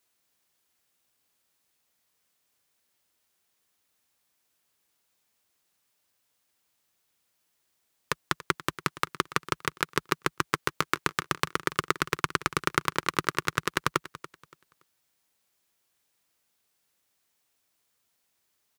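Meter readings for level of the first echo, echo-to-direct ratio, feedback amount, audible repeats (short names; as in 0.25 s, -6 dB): -16.5 dB, -16.0 dB, 26%, 2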